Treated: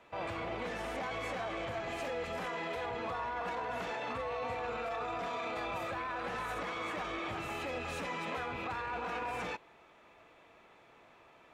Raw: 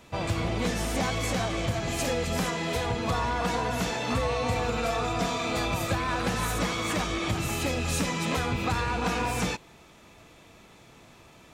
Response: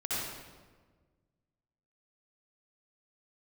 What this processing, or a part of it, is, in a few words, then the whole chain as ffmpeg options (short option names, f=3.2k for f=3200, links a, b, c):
DJ mixer with the lows and highs turned down: -filter_complex "[0:a]acrossover=split=370 2900:gain=0.2 1 0.141[a][b][c];[a][b][c]amix=inputs=3:normalize=0,alimiter=level_in=2.5dB:limit=-24dB:level=0:latency=1:release=12,volume=-2.5dB,volume=-3.5dB"